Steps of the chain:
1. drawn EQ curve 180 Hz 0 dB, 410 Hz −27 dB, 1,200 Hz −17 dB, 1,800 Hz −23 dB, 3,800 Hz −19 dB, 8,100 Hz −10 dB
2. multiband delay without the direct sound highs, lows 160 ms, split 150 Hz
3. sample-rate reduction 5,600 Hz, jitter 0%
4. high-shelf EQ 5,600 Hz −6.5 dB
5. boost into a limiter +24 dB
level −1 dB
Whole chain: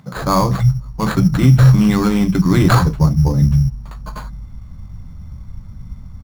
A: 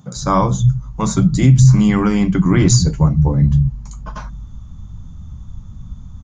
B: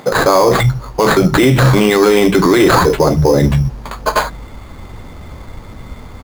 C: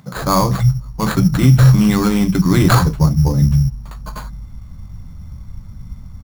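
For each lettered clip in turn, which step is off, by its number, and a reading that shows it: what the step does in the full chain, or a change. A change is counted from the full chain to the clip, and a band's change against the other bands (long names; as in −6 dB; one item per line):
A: 3, distortion level −10 dB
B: 1, 125 Hz band −11.0 dB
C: 4, 8 kHz band +4.0 dB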